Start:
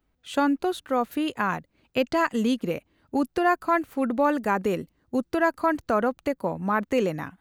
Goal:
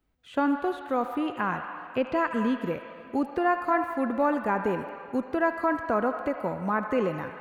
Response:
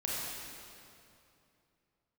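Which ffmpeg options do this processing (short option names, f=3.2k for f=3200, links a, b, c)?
-filter_complex "[0:a]acrossover=split=2600[a][b];[b]acompressor=threshold=-54dB:ratio=4:attack=1:release=60[c];[a][c]amix=inputs=2:normalize=0,asplit=2[d][e];[e]acrossover=split=580 4700:gain=0.178 1 0.0631[f][g][h];[f][g][h]amix=inputs=3:normalize=0[i];[1:a]atrim=start_sample=2205,adelay=77[j];[i][j]afir=irnorm=-1:irlink=0,volume=-9.5dB[k];[d][k]amix=inputs=2:normalize=0,volume=-2.5dB"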